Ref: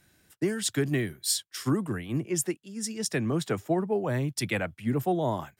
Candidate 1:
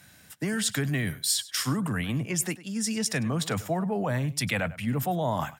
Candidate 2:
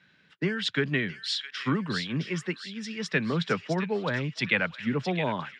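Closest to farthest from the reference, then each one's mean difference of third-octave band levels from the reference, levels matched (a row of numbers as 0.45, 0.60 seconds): 1, 2; 5.5, 7.5 decibels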